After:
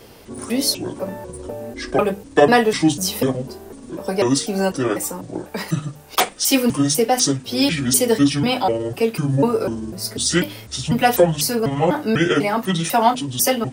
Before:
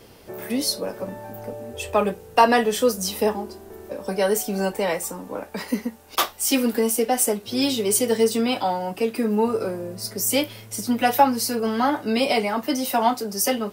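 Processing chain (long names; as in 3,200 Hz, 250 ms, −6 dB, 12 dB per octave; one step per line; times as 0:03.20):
pitch shifter gated in a rhythm −8 semitones, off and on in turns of 248 ms
mains-hum notches 50/100/150/200/250/300 Hz
level +4.5 dB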